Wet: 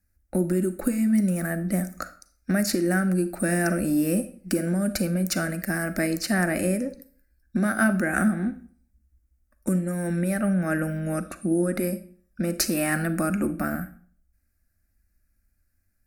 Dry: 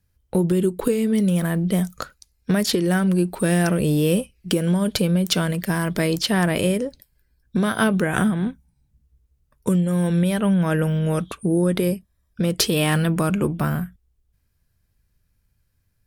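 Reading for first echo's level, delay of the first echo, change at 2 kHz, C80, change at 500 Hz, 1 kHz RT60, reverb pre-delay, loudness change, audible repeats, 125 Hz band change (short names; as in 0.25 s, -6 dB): none, none, -0.5 dB, 18.5 dB, -5.0 dB, 0.45 s, 35 ms, -4.0 dB, none, -7.0 dB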